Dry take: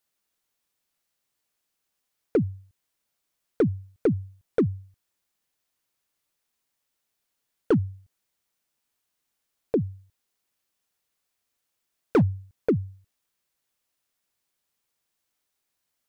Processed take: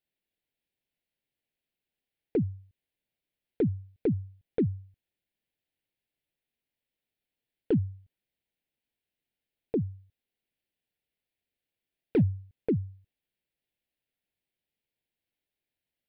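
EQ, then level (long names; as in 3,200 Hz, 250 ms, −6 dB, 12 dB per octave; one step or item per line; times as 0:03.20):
phaser with its sweep stopped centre 2,800 Hz, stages 4
dynamic equaliser 870 Hz, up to −7 dB, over −40 dBFS, Q 0.93
high-shelf EQ 4,000 Hz −10 dB
−2.0 dB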